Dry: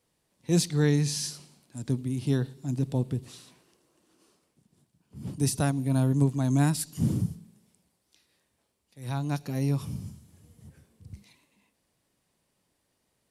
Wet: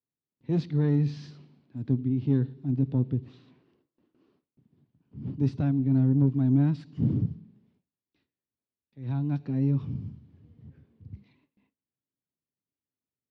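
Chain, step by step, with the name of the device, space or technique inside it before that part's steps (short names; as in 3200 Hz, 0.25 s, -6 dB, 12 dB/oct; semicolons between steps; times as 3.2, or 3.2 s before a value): guitar amplifier (tube stage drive 18 dB, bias 0.25; tone controls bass +12 dB, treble -11 dB; speaker cabinet 100–4500 Hz, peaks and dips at 180 Hz -4 dB, 270 Hz +7 dB, 400 Hz +5 dB); gate with hold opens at -53 dBFS; gain -6 dB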